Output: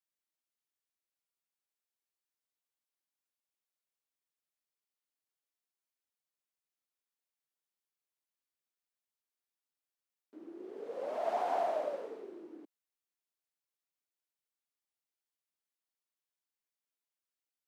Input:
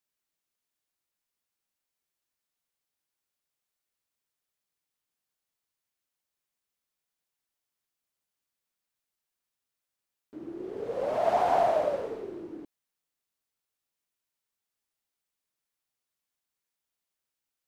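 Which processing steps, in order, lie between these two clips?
high-pass 230 Hz 24 dB/octave; trim -8.5 dB

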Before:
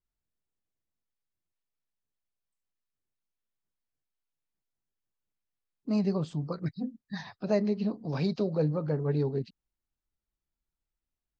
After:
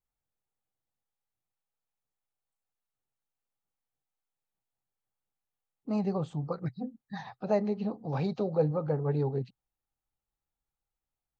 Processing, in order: graphic EQ with 31 bands 125 Hz +7 dB, 500 Hz +6 dB, 800 Hz +12 dB, 1.25 kHz +5 dB, 5 kHz -9 dB; trim -3.5 dB

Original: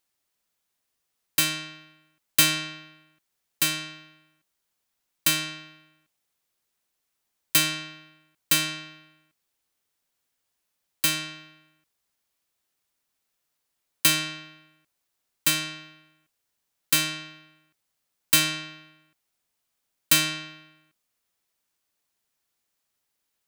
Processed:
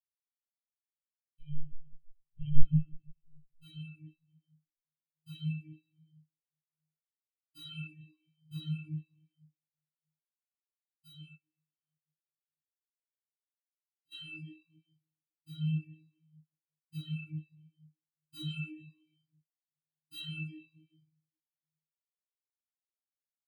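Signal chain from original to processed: peaking EQ 80 Hz +15 dB 1.8 oct; 1.39–2.53 s: monotone LPC vocoder at 8 kHz 150 Hz; saturation -9.5 dBFS, distortion -19 dB; chorus 0.83 Hz, delay 18.5 ms, depth 7 ms; reverberation RT60 3.6 s, pre-delay 3 ms, DRR -5.5 dB; 11.37–14.12 s: compression 2:1, threshold -37 dBFS, peak gain reduction 10.5 dB; spectral contrast expander 4:1; trim +2.5 dB

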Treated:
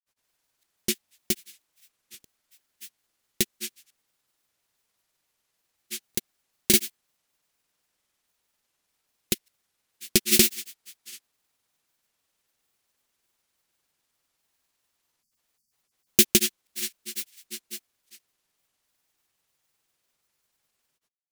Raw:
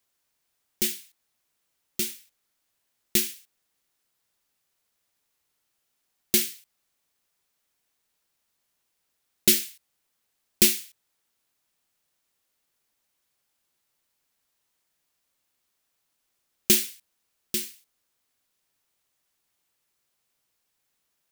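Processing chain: spectral selection erased 15.41–15.93 s, 260–4400 Hz; granulator 100 ms, grains 20 per s, spray 532 ms, pitch spread up and down by 0 st; trim +3 dB

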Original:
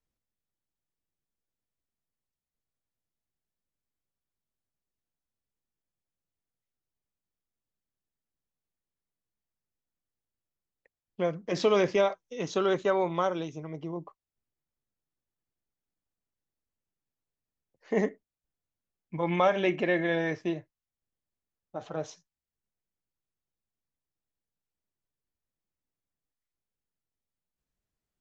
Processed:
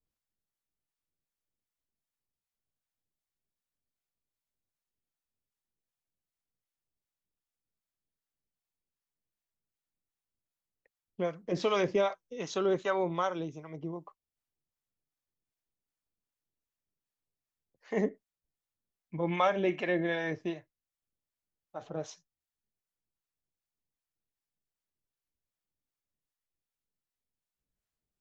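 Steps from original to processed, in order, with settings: harmonic tremolo 2.6 Hz, depth 70%, crossover 650 Hz

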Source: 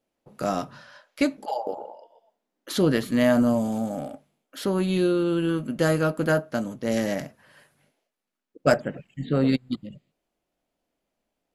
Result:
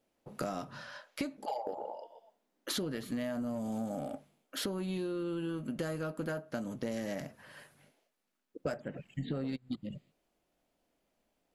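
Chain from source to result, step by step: in parallel at -6 dB: saturation -23 dBFS, distortion -9 dB; on the sum: compression 16:1, threshold -31 dBFS, peak gain reduction 19 dB; trim -2 dB

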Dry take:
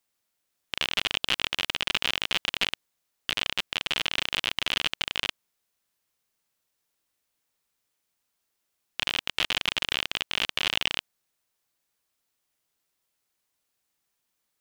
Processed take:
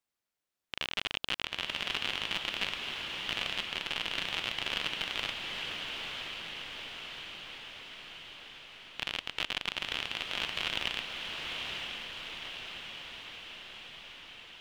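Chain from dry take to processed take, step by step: treble shelf 5.1 kHz -7 dB; echo that smears into a reverb 920 ms, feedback 66%, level -3.5 dB; trim -6 dB

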